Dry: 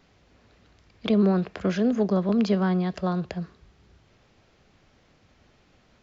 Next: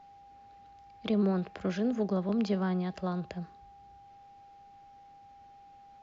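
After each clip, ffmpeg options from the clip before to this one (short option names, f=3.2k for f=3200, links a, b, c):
-af "aeval=exprs='val(0)+0.00562*sin(2*PI*800*n/s)':c=same,volume=-7dB"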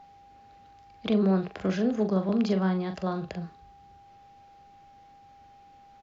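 -filter_complex "[0:a]asplit=2[a][b];[b]adelay=42,volume=-7.5dB[c];[a][c]amix=inputs=2:normalize=0,volume=3.5dB"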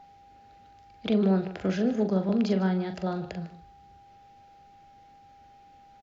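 -filter_complex "[0:a]bandreject=f=1.1k:w=6.7,asplit=2[a][b];[b]adelay=151.6,volume=-15dB,highshelf=f=4k:g=-3.41[c];[a][c]amix=inputs=2:normalize=0"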